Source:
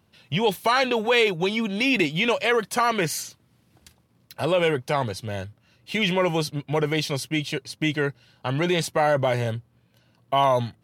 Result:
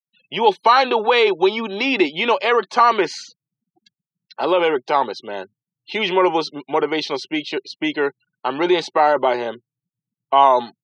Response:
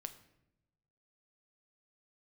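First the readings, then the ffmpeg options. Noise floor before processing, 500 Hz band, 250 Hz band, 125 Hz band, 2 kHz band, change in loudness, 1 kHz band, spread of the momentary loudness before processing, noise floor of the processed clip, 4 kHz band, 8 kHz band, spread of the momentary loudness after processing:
-64 dBFS, +5.0 dB, +2.5 dB, -13.5 dB, +2.5 dB, +5.0 dB, +9.0 dB, 10 LU, under -85 dBFS, +3.0 dB, -7.0 dB, 12 LU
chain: -af "afftfilt=real='re*gte(hypot(re,im),0.00708)':imag='im*gte(hypot(re,im),0.00708)':win_size=1024:overlap=0.75,highpass=f=240:w=0.5412,highpass=f=240:w=1.3066,equalizer=f=380:t=q:w=4:g=8,equalizer=f=860:t=q:w=4:g=10,equalizer=f=1.2k:t=q:w=4:g=7,equalizer=f=4k:t=q:w=4:g=4,lowpass=f=5.4k:w=0.5412,lowpass=f=5.4k:w=1.3066,volume=1.5dB"

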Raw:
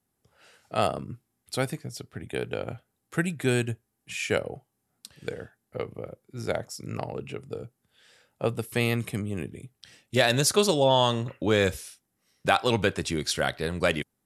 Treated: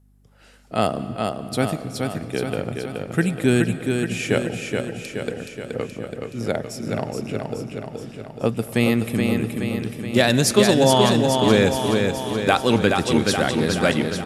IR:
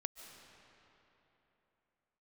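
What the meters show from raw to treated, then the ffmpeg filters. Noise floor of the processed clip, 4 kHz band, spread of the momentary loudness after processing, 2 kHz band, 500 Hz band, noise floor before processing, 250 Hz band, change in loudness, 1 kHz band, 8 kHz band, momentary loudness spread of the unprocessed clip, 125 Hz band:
-43 dBFS, +5.0 dB, 14 LU, +5.0 dB, +6.5 dB, -78 dBFS, +11.0 dB, +6.0 dB, +5.5 dB, +5.0 dB, 18 LU, +7.0 dB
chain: -filter_complex "[0:a]equalizer=f=240:w=1.4:g=7.5,aeval=exprs='val(0)+0.00126*(sin(2*PI*50*n/s)+sin(2*PI*2*50*n/s)/2+sin(2*PI*3*50*n/s)/3+sin(2*PI*4*50*n/s)/4+sin(2*PI*5*50*n/s)/5)':c=same,aecho=1:1:424|848|1272|1696|2120|2544|2968|3392|3816:0.596|0.357|0.214|0.129|0.0772|0.0463|0.0278|0.0167|0.01,asplit=2[a][b];[1:a]atrim=start_sample=2205[c];[b][c]afir=irnorm=-1:irlink=0,volume=-1.5dB[d];[a][d]amix=inputs=2:normalize=0,volume=-1dB"

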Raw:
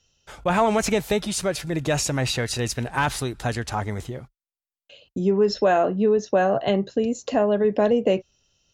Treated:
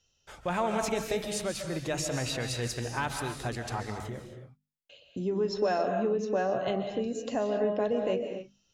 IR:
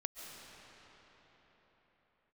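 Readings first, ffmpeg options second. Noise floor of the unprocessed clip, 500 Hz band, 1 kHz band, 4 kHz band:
under -85 dBFS, -8.0 dB, -8.0 dB, -7.5 dB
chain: -filter_complex "[0:a]bandreject=f=50:t=h:w=6,bandreject=f=100:t=h:w=6,bandreject=f=150:t=h:w=6,bandreject=f=200:t=h:w=6,bandreject=f=250:t=h:w=6,asplit=2[a][b];[b]acompressor=threshold=-30dB:ratio=6,volume=-2dB[c];[a][c]amix=inputs=2:normalize=0[d];[1:a]atrim=start_sample=2205,afade=t=out:st=0.34:d=0.01,atrim=end_sample=15435[e];[d][e]afir=irnorm=-1:irlink=0,volume=-7.5dB"

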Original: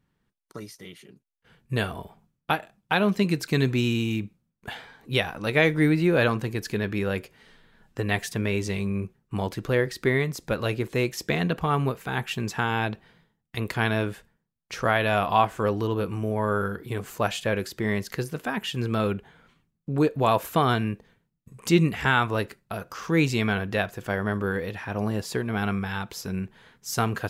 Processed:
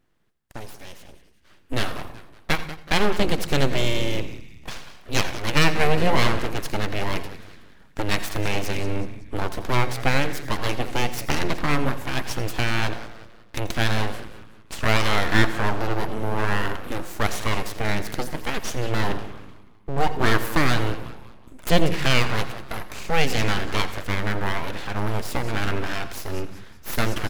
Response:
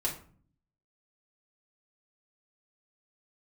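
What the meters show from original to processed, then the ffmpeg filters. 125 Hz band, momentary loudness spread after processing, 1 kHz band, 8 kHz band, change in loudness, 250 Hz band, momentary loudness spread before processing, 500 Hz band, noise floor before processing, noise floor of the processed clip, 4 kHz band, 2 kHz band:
+0.5 dB, 18 LU, +1.5 dB, +5.0 dB, +1.0 dB, -2.0 dB, 15 LU, -1.0 dB, -78 dBFS, -49 dBFS, +5.5 dB, +2.5 dB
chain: -filter_complex "[0:a]asplit=5[a][b][c][d][e];[b]adelay=187,afreqshift=-89,volume=-14.5dB[f];[c]adelay=374,afreqshift=-178,volume=-21.8dB[g];[d]adelay=561,afreqshift=-267,volume=-29.2dB[h];[e]adelay=748,afreqshift=-356,volume=-36.5dB[i];[a][f][g][h][i]amix=inputs=5:normalize=0,aeval=exprs='abs(val(0))':c=same,asplit=2[j][k];[1:a]atrim=start_sample=2205,adelay=82[l];[k][l]afir=irnorm=-1:irlink=0,volume=-18.5dB[m];[j][m]amix=inputs=2:normalize=0,volume=4.5dB"

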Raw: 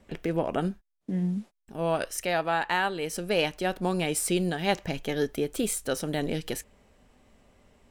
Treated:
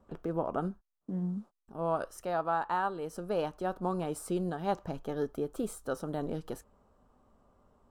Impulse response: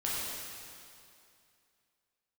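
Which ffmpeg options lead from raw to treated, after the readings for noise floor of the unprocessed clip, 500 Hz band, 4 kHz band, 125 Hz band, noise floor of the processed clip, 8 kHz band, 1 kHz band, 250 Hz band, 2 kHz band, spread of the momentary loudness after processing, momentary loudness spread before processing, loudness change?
-77 dBFS, -5.0 dB, -17.5 dB, -6.0 dB, -82 dBFS, -15.5 dB, -2.5 dB, -6.0 dB, -12.5 dB, 8 LU, 7 LU, -6.0 dB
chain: -af "highshelf=f=1.6k:t=q:w=3:g=-9,volume=-6dB" -ar 48000 -c:a aac -b:a 128k

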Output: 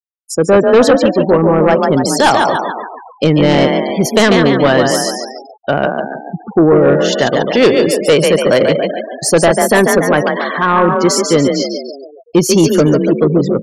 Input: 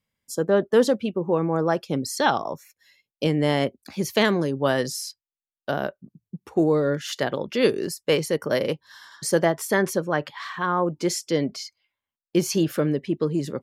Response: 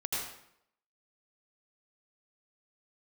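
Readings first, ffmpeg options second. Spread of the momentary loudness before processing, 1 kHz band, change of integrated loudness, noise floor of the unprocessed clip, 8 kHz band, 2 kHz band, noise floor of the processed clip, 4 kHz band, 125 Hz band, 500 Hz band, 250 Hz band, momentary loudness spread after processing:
11 LU, +13.5 dB, +12.5 dB, under -85 dBFS, +12.5 dB, +12.5 dB, -39 dBFS, +12.0 dB, +12.0 dB, +13.0 dB, +12.5 dB, 10 LU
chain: -filter_complex "[0:a]asplit=8[a][b][c][d][e][f][g][h];[b]adelay=142,afreqshift=32,volume=-5.5dB[i];[c]adelay=284,afreqshift=64,volume=-10.5dB[j];[d]adelay=426,afreqshift=96,volume=-15.6dB[k];[e]adelay=568,afreqshift=128,volume=-20.6dB[l];[f]adelay=710,afreqshift=160,volume=-25.6dB[m];[g]adelay=852,afreqshift=192,volume=-30.7dB[n];[h]adelay=994,afreqshift=224,volume=-35.7dB[o];[a][i][j][k][l][m][n][o]amix=inputs=8:normalize=0,afftfilt=real='re*gte(hypot(re,im),0.02)':imag='im*gte(hypot(re,im),0.02)':win_size=1024:overlap=0.75,aeval=exprs='0.501*sin(PI/2*2*val(0)/0.501)':c=same,volume=3dB"

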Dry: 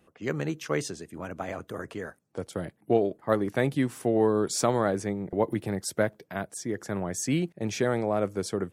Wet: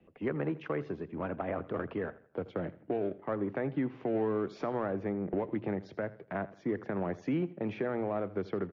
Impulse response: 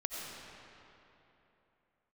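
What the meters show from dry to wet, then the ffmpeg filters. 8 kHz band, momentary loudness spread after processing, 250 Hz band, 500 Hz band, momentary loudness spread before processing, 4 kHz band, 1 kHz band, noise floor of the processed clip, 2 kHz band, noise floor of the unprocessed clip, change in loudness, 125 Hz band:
under -35 dB, 6 LU, -4.5 dB, -6.0 dB, 12 LU, under -15 dB, -6.5 dB, -60 dBFS, -7.0 dB, -67 dBFS, -6.0 dB, -6.5 dB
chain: -filter_complex "[0:a]acrossover=split=130|1900[a][b][c];[b]adynamicsmooth=sensitivity=8:basefreq=720[d];[a][d][c]amix=inputs=3:normalize=0,lowpass=f=2.5k:w=0.5412,lowpass=f=2.5k:w=1.3066,acrossover=split=190|1900[e][f][g];[e]acompressor=threshold=-46dB:ratio=4[h];[f]acompressor=threshold=-31dB:ratio=4[i];[g]acompressor=threshold=-55dB:ratio=4[j];[h][i][j]amix=inputs=3:normalize=0,alimiter=level_in=1.5dB:limit=-24dB:level=0:latency=1:release=67,volume=-1.5dB,bandreject=f=60:t=h:w=6,bandreject=f=120:t=h:w=6,aecho=1:1:82|164|246:0.126|0.0466|0.0172,volume=3dB" -ar 16000 -c:a libmp3lame -b:a 48k

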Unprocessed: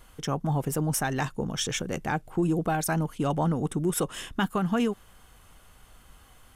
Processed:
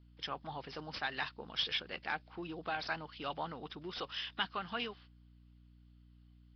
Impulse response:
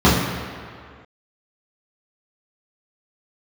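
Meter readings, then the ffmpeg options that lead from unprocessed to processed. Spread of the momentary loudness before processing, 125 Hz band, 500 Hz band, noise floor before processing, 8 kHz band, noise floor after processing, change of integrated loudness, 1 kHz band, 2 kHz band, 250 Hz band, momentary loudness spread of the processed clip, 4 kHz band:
4 LU, -23.5 dB, -14.5 dB, -55 dBFS, -30.5 dB, -61 dBFS, -11.5 dB, -9.5 dB, -4.5 dB, -20.5 dB, 9 LU, -1.0 dB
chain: -filter_complex "[0:a]agate=range=-20dB:threshold=-43dB:ratio=16:detection=peak,aderivative,aeval=exprs='val(0)+0.000398*(sin(2*PI*60*n/s)+sin(2*PI*2*60*n/s)/2+sin(2*PI*3*60*n/s)/3+sin(2*PI*4*60*n/s)/4+sin(2*PI*5*60*n/s)/5)':c=same,acrossover=split=1700[a][b];[b]asoftclip=type=tanh:threshold=-28dB[c];[a][c]amix=inputs=2:normalize=0,volume=8.5dB" -ar 11025 -c:a nellymoser

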